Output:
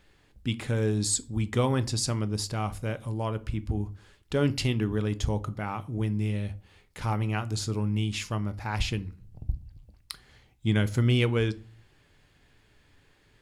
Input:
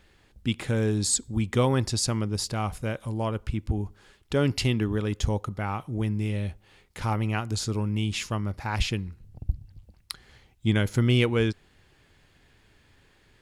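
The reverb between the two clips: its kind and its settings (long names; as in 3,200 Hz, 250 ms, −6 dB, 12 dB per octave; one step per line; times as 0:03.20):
rectangular room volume 220 cubic metres, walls furnished, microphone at 0.37 metres
level −2.5 dB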